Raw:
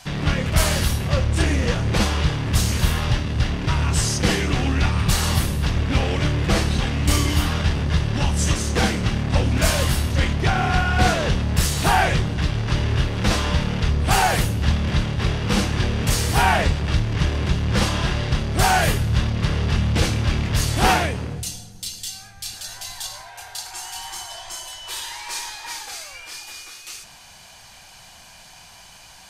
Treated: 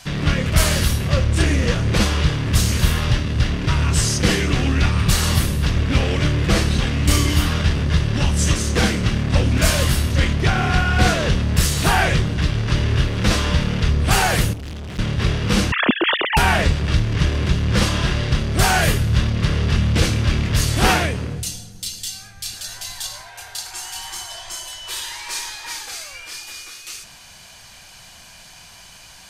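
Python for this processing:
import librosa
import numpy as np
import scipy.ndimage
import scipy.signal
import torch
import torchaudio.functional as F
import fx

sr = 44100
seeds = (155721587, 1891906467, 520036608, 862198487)

y = fx.sine_speech(x, sr, at=(15.72, 16.37))
y = fx.peak_eq(y, sr, hz=820.0, db=-5.5, octaves=0.56)
y = fx.tube_stage(y, sr, drive_db=32.0, bias=0.8, at=(14.53, 14.99))
y = y * 10.0 ** (2.5 / 20.0)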